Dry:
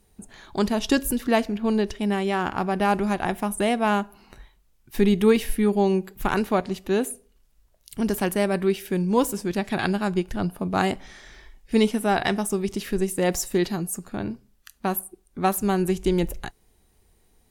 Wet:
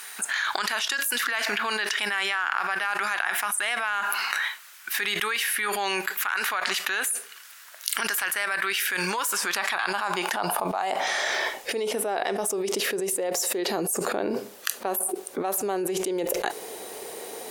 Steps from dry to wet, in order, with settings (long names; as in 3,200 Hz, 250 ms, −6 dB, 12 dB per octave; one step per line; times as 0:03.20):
high-pass filter sweep 1,500 Hz → 480 Hz, 0:09.03–0:11.95
envelope flattener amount 100%
level −12.5 dB